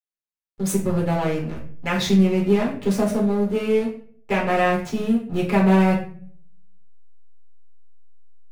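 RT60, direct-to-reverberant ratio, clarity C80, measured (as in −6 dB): 0.50 s, −5.5 dB, 11.5 dB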